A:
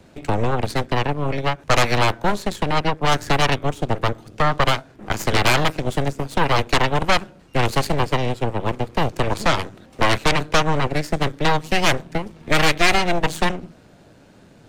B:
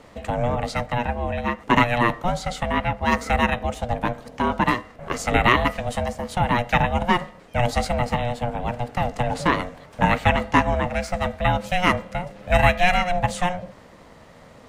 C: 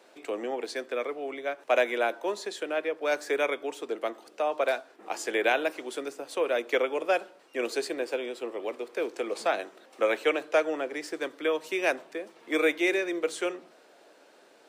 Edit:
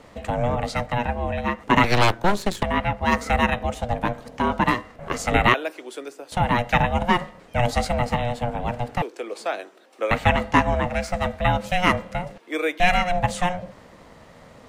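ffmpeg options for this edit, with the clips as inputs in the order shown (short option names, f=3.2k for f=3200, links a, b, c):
-filter_complex "[2:a]asplit=3[a][b][c];[1:a]asplit=5[d][e][f][g][h];[d]atrim=end=1.842[i];[0:a]atrim=start=1.838:end=2.632[j];[e]atrim=start=2.628:end=5.542[k];[a]atrim=start=5.538:end=6.322[l];[f]atrim=start=6.318:end=9.022[m];[b]atrim=start=9.018:end=10.112[n];[g]atrim=start=10.108:end=12.382[o];[c]atrim=start=12.378:end=12.802[p];[h]atrim=start=12.798[q];[i][j]acrossfade=d=0.004:c1=hsin:c2=hsin[r];[r][k]acrossfade=d=0.004:c1=hsin:c2=hsin[s];[s][l]acrossfade=d=0.004:c1=hsin:c2=hsin[t];[t][m]acrossfade=d=0.004:c1=hsin:c2=hsin[u];[u][n]acrossfade=d=0.004:c1=hsin:c2=hsin[v];[v][o]acrossfade=d=0.004:c1=hsin:c2=hsin[w];[w][p]acrossfade=d=0.004:c1=hsin:c2=hsin[x];[x][q]acrossfade=d=0.004:c1=hsin:c2=hsin"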